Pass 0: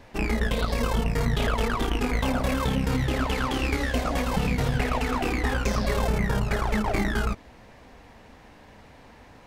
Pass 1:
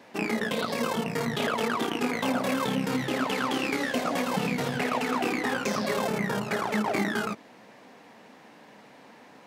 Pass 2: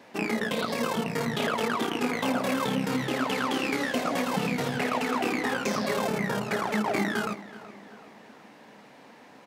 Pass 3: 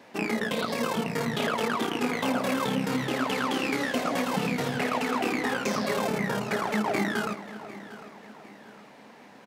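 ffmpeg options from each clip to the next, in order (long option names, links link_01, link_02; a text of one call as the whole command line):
ffmpeg -i in.wav -af "highpass=frequency=170:width=0.5412,highpass=frequency=170:width=1.3066" out.wav
ffmpeg -i in.wav -filter_complex "[0:a]asplit=2[link_01][link_02];[link_02]adelay=376,lowpass=frequency=4300:poles=1,volume=-17dB,asplit=2[link_03][link_04];[link_04]adelay=376,lowpass=frequency=4300:poles=1,volume=0.51,asplit=2[link_05][link_06];[link_06]adelay=376,lowpass=frequency=4300:poles=1,volume=0.51,asplit=2[link_07][link_08];[link_08]adelay=376,lowpass=frequency=4300:poles=1,volume=0.51[link_09];[link_01][link_03][link_05][link_07][link_09]amix=inputs=5:normalize=0" out.wav
ffmpeg -i in.wav -af "aecho=1:1:752|1504|2256:0.0891|0.0428|0.0205" out.wav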